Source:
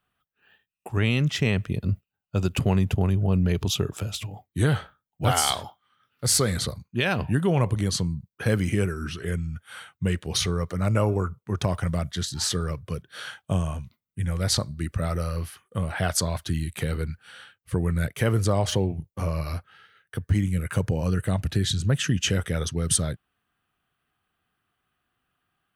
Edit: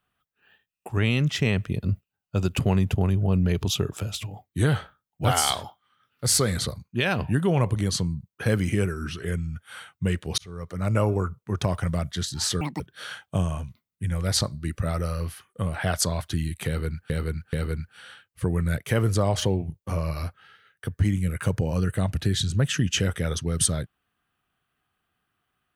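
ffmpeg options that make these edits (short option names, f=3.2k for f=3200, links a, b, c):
-filter_complex "[0:a]asplit=6[a][b][c][d][e][f];[a]atrim=end=10.38,asetpts=PTS-STARTPTS,afade=t=out:st=10.376:d=0.004:c=hsin[g];[b]atrim=start=10.38:end=12.614,asetpts=PTS-STARTPTS,afade=t=in:d=0.59[h];[c]atrim=start=12.61:end=12.96,asetpts=PTS-STARTPTS,asetrate=81585,aresample=44100,atrim=end_sample=8343,asetpts=PTS-STARTPTS[i];[d]atrim=start=12.956:end=17.262[j];[e]atrim=start=16.828:end=17.262[k];[f]atrim=start=16.828[l];[g][h]concat=n=2:v=0:a=1[m];[m][i]acrossfade=d=0.004:c1=hsin:c2=hsin[n];[n][j]acrossfade=d=0.004:c1=hsin:c2=hsin[o];[o][k]acrossfade=d=0.004:c1=hsin:c2=hsin[p];[p][l]acrossfade=d=0.004:c1=hsin:c2=hsin"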